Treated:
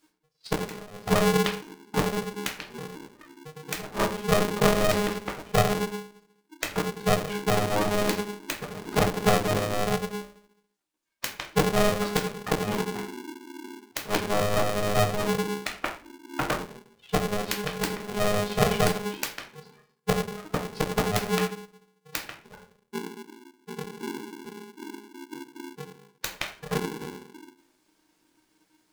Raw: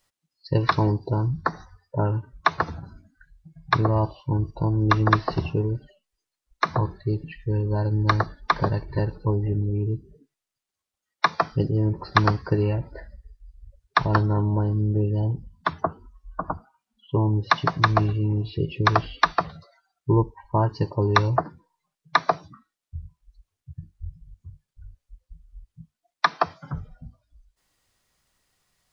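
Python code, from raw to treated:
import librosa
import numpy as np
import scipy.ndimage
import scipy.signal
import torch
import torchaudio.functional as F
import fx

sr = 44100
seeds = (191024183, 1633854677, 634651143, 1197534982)

y = fx.self_delay(x, sr, depth_ms=0.66)
y = fx.dereverb_blind(y, sr, rt60_s=0.64)
y = fx.gate_flip(y, sr, shuts_db=-13.0, range_db=-29)
y = fx.room_shoebox(y, sr, seeds[0], volume_m3=36.0, walls='mixed', distance_m=0.56)
y = y * np.sign(np.sin(2.0 * np.pi * 310.0 * np.arange(len(y)) / sr))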